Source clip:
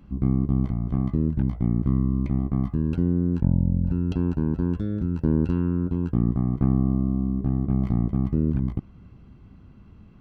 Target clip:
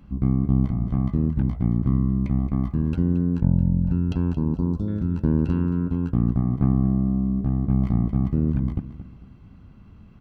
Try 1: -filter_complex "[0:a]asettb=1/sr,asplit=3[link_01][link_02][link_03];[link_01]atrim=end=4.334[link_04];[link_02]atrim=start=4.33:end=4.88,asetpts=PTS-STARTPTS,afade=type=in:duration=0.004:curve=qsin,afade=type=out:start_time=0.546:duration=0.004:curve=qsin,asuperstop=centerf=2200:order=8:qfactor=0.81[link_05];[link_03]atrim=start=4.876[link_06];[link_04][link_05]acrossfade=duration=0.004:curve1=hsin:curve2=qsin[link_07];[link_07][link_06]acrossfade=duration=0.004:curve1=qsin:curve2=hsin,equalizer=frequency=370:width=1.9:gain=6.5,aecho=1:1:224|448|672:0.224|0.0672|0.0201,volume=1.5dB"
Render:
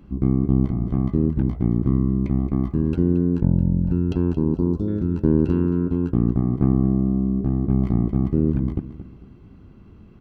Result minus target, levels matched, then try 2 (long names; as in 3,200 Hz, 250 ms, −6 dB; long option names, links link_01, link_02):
500 Hz band +6.5 dB
-filter_complex "[0:a]asettb=1/sr,asplit=3[link_01][link_02][link_03];[link_01]atrim=end=4.334[link_04];[link_02]atrim=start=4.33:end=4.88,asetpts=PTS-STARTPTS,afade=type=in:duration=0.004:curve=qsin,afade=type=out:start_time=0.546:duration=0.004:curve=qsin,asuperstop=centerf=2200:order=8:qfactor=0.81[link_05];[link_03]atrim=start=4.876[link_06];[link_04][link_05]acrossfade=duration=0.004:curve1=hsin:curve2=qsin[link_07];[link_07][link_06]acrossfade=duration=0.004:curve1=qsin:curve2=hsin,equalizer=frequency=370:width=1.9:gain=-3.5,aecho=1:1:224|448|672:0.224|0.0672|0.0201,volume=1.5dB"